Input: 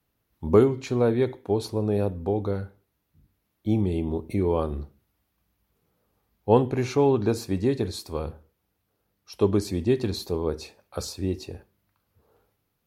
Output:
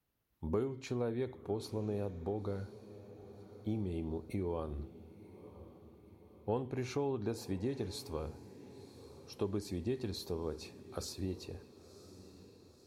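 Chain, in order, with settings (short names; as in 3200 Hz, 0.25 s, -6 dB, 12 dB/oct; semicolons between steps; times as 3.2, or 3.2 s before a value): compressor 2.5:1, threshold -27 dBFS, peak gain reduction 10.5 dB; on a send: diffused feedback echo 1.014 s, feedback 54%, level -16 dB; on the sum: gain -8 dB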